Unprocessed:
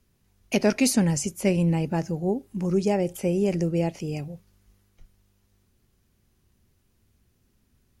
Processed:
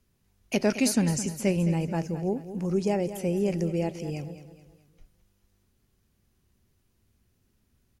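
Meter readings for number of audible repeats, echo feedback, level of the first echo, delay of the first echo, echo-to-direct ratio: 3, 41%, −12.5 dB, 214 ms, −11.5 dB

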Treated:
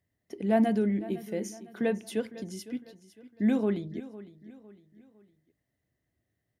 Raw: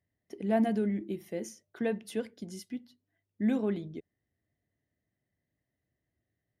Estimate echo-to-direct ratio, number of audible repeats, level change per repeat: −16.0 dB, 3, −7.5 dB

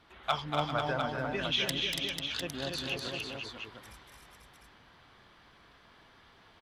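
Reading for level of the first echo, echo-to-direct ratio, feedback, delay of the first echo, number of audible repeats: −6.0 dB, 0.5 dB, repeats not evenly spaced, 239 ms, 5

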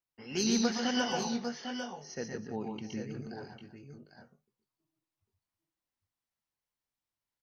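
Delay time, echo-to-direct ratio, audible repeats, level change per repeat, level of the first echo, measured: 118 ms, −1.0 dB, 3, repeats not evenly spaced, −5.0 dB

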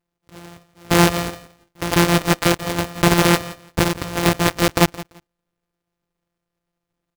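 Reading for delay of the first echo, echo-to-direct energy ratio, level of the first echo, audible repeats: 170 ms, −18.0 dB, −18.0 dB, 2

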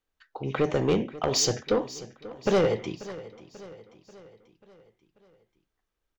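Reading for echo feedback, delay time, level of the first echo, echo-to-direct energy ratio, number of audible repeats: 53%, 538 ms, −17.0 dB, −15.5 dB, 4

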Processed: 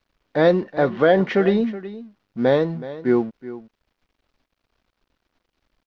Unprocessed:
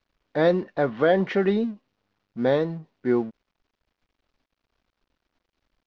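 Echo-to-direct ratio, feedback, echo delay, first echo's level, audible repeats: −15.5 dB, repeats not evenly spaced, 373 ms, −15.5 dB, 1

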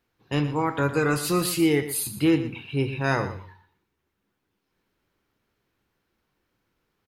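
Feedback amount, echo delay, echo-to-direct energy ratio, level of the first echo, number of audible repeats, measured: 17%, 118 ms, −12.5 dB, −12.5 dB, 2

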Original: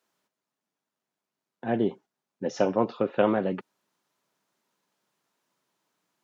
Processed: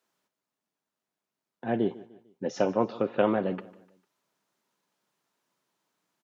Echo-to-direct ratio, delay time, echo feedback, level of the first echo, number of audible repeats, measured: −18.5 dB, 150 ms, 42%, −19.5 dB, 3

